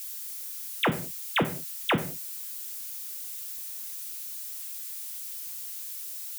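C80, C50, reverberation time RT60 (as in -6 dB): 16.5 dB, 13.0 dB, no single decay rate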